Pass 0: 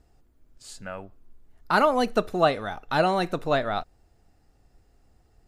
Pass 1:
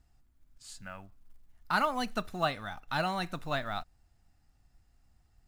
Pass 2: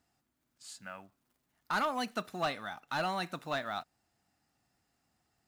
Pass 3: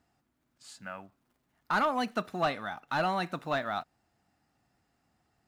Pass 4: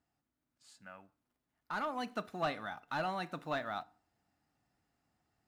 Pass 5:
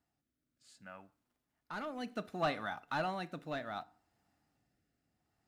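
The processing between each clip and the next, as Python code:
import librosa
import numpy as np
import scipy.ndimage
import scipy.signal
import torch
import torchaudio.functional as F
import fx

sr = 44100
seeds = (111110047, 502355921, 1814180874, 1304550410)

y1 = fx.peak_eq(x, sr, hz=440.0, db=-14.0, octaves=1.1)
y1 = fx.quant_float(y1, sr, bits=4)
y1 = y1 * librosa.db_to_amplitude(-4.5)
y2 = scipy.signal.sosfilt(scipy.signal.butter(2, 200.0, 'highpass', fs=sr, output='sos'), y1)
y2 = 10.0 ** (-24.5 / 20.0) * np.tanh(y2 / 10.0 ** (-24.5 / 20.0))
y3 = fx.high_shelf(y2, sr, hz=3400.0, db=-9.0)
y3 = y3 * librosa.db_to_amplitude(5.0)
y4 = fx.rider(y3, sr, range_db=10, speed_s=0.5)
y4 = fx.rev_fdn(y4, sr, rt60_s=0.44, lf_ratio=1.35, hf_ratio=0.75, size_ms=20.0, drr_db=16.5)
y4 = y4 * librosa.db_to_amplitude(-7.0)
y5 = fx.rotary(y4, sr, hz=0.65)
y5 = y5 * librosa.db_to_amplitude(2.5)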